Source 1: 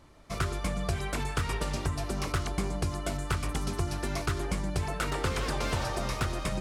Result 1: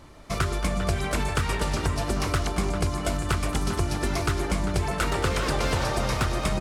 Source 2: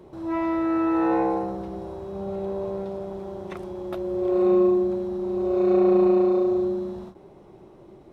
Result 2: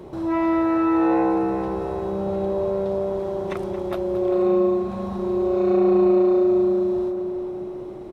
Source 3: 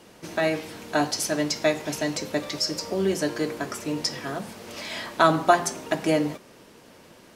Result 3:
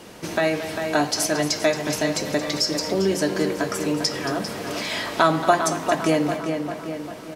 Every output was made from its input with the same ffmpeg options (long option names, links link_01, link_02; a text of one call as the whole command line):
ffmpeg -i in.wav -filter_complex "[0:a]asplit=2[link_01][link_02];[link_02]adelay=397,lowpass=frequency=3700:poles=1,volume=-9dB,asplit=2[link_03][link_04];[link_04]adelay=397,lowpass=frequency=3700:poles=1,volume=0.44,asplit=2[link_05][link_06];[link_06]adelay=397,lowpass=frequency=3700:poles=1,volume=0.44,asplit=2[link_07][link_08];[link_08]adelay=397,lowpass=frequency=3700:poles=1,volume=0.44,asplit=2[link_09][link_10];[link_10]adelay=397,lowpass=frequency=3700:poles=1,volume=0.44[link_11];[link_03][link_05][link_07][link_09][link_11]amix=inputs=5:normalize=0[link_12];[link_01][link_12]amix=inputs=2:normalize=0,acompressor=threshold=-35dB:ratio=1.5,asplit=2[link_13][link_14];[link_14]aecho=0:1:225:0.224[link_15];[link_13][link_15]amix=inputs=2:normalize=0,volume=8dB" out.wav